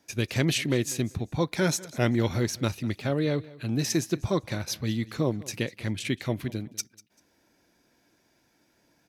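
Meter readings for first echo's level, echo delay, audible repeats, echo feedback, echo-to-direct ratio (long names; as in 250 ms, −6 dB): −20.5 dB, 195 ms, 2, 25%, −20.0 dB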